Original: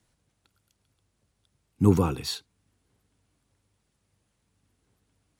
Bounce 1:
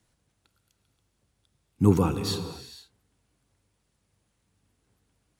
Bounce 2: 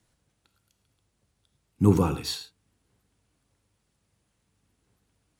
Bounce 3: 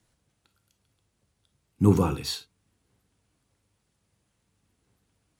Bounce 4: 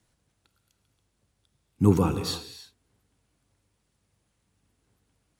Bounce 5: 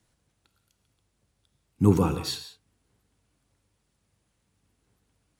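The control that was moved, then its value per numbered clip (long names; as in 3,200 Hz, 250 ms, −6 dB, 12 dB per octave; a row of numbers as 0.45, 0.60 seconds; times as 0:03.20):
reverb whose tail is shaped and stops, gate: 520, 130, 80, 350, 200 milliseconds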